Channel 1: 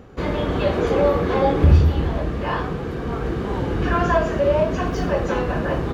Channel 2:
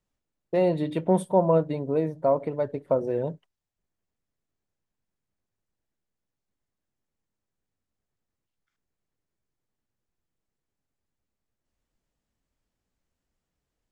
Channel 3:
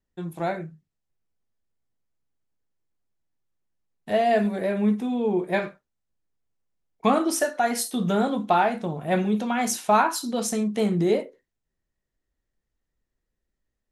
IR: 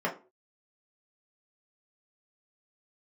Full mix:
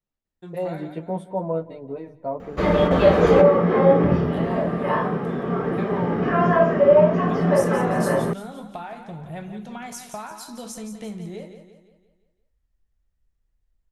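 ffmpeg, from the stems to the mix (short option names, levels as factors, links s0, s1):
-filter_complex "[0:a]adelay=2400,volume=0.944,asplit=2[s0][s1];[s1]volume=0.376[s2];[1:a]highshelf=f=7300:g=-11.5,asplit=2[s3][s4];[s4]adelay=10.8,afreqshift=0.32[s5];[s3][s5]amix=inputs=2:normalize=1,volume=0.708,asplit=3[s6][s7][s8];[s7]volume=0.1[s9];[2:a]asubboost=boost=7.5:cutoff=99,acompressor=threshold=0.0447:ratio=6,adelay=250,volume=0.531,asplit=2[s10][s11];[s11]volume=0.355[s12];[s8]apad=whole_len=367469[s13];[s0][s13]sidechaingate=range=0.0224:threshold=0.00501:ratio=16:detection=peak[s14];[3:a]atrim=start_sample=2205[s15];[s2][s15]afir=irnorm=-1:irlink=0[s16];[s9][s12]amix=inputs=2:normalize=0,aecho=0:1:172|344|516|688|860|1032:1|0.46|0.212|0.0973|0.0448|0.0206[s17];[s14][s6][s10][s16][s17]amix=inputs=5:normalize=0"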